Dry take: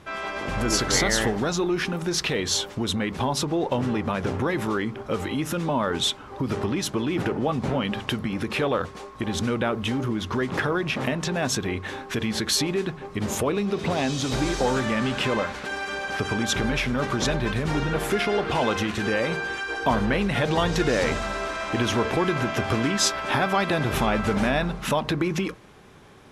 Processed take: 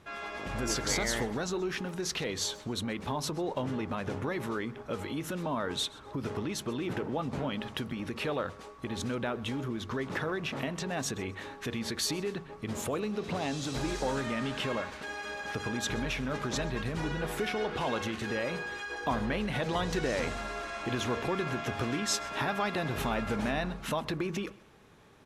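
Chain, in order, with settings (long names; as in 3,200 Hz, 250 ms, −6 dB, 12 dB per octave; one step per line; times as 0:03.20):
on a send: repeating echo 134 ms, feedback 26%, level −21.5 dB
on the sum: wrong playback speed 24 fps film run at 25 fps
level −8.5 dB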